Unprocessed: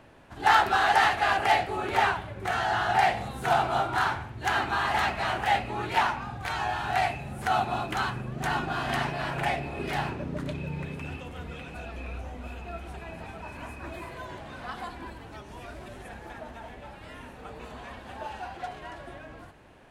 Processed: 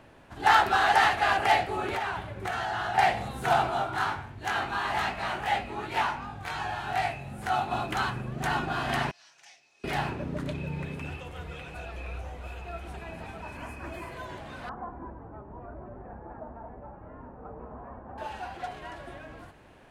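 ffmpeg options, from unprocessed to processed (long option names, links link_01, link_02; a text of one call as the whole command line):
ffmpeg -i in.wav -filter_complex "[0:a]asettb=1/sr,asplit=3[link_01][link_02][link_03];[link_01]atrim=end=1.914[link_04];[link_02]atrim=start=1.91:end=2.98,asetpts=PTS-STARTPTS,afade=type=in:duration=0.004:curve=qsin,afade=type=out:start_time=1.066:duration=0.004:curve=qsin,acompressor=threshold=-27dB:ratio=6:attack=3.2:release=140:knee=1:detection=peak[link_05];[link_03]atrim=start=2.976[link_06];[link_04][link_05]acrossfade=duration=0.004:curve1=hsin:curve2=qsin[link_07];[link_07][link_06]acrossfade=duration=0.004:curve1=qsin:curve2=hsin,asplit=3[link_08][link_09][link_10];[link_08]afade=type=out:start_time=3.69:duration=0.02[link_11];[link_09]flanger=delay=19.5:depth=2.5:speed=2.7,afade=type=in:start_time=3.69:duration=0.02,afade=type=out:start_time=7.7:duration=0.02[link_12];[link_10]afade=type=in:start_time=7.7:duration=0.02[link_13];[link_11][link_12][link_13]amix=inputs=3:normalize=0,asettb=1/sr,asplit=3[link_14][link_15][link_16];[link_14]atrim=end=9.114[link_17];[link_15]atrim=start=9.11:end=9.84,asetpts=PTS-STARTPTS,afade=type=in:duration=0.004:curve=qsin,afade=type=out:start_time=0.726:duration=0.004:curve=qsin,bandpass=frequency=5900:width_type=q:width=5.9[link_18];[link_16]atrim=start=9.836[link_19];[link_17][link_18]acrossfade=duration=0.004:curve1=hsin:curve2=qsin[link_20];[link_20][link_19]acrossfade=duration=0.004:curve1=qsin:curve2=hsin,asettb=1/sr,asplit=3[link_21][link_22][link_23];[link_21]atrim=end=11.104[link_24];[link_22]atrim=start=11.1:end=12.83,asetpts=PTS-STARTPTS,afade=type=in:duration=0.004:curve=qsin,afade=type=out:start_time=1.726:duration=0.004:curve=qsin,equalizer=frequency=240:width_type=o:width=0.34:gain=-14.5[link_25];[link_23]atrim=start=12.826[link_26];[link_24][link_25]acrossfade=duration=0.004:curve1=hsin:curve2=qsin[link_27];[link_27][link_26]acrossfade=duration=0.004:curve1=qsin:curve2=hsin,asettb=1/sr,asplit=3[link_28][link_29][link_30];[link_28]atrim=end=13.564[link_31];[link_29]atrim=start=13.56:end=14.13,asetpts=PTS-STARTPTS,afade=type=in:duration=0.004:curve=qsin,afade=type=out:start_time=0.566:duration=0.004:curve=qsin,bandreject=frequency=3800:width=7.1[link_32];[link_30]atrim=start=14.126[link_33];[link_31][link_32]acrossfade=duration=0.004:curve1=hsin:curve2=qsin[link_34];[link_34][link_33]acrossfade=duration=0.004:curve1=qsin:curve2=hsin,asettb=1/sr,asplit=3[link_35][link_36][link_37];[link_35]atrim=end=14.694[link_38];[link_36]atrim=start=14.69:end=18.18,asetpts=PTS-STARTPTS,afade=type=in:duration=0.004:curve=qsin,afade=type=out:start_time=3.486:duration=0.004:curve=qsin,lowpass=frequency=1200:width=0.5412,lowpass=frequency=1200:width=1.3066[link_39];[link_37]atrim=start=18.176[link_40];[link_38][link_39]acrossfade=duration=0.004:curve1=hsin:curve2=qsin[link_41];[link_41][link_40]acrossfade=duration=0.004:curve1=qsin:curve2=hsin" out.wav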